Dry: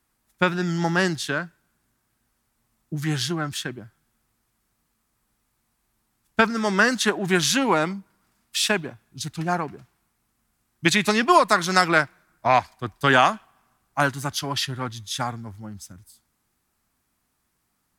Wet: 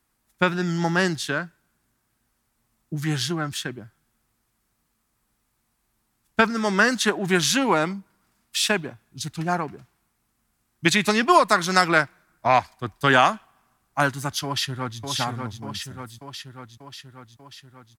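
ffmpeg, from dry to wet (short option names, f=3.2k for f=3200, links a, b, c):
-filter_complex "[0:a]asplit=2[a][b];[b]afade=t=in:st=14.44:d=0.01,afade=t=out:st=15:d=0.01,aecho=0:1:590|1180|1770|2360|2950|3540|4130|4720|5310|5900:0.630957|0.410122|0.266579|0.173277|0.11263|0.0732094|0.0475861|0.030931|0.0201051|0.0130683[c];[a][c]amix=inputs=2:normalize=0"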